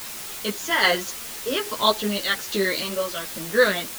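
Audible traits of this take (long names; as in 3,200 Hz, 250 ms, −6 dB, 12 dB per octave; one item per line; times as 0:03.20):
tremolo saw down 1.2 Hz, depth 65%
a quantiser's noise floor 6 bits, dither triangular
a shimmering, thickened sound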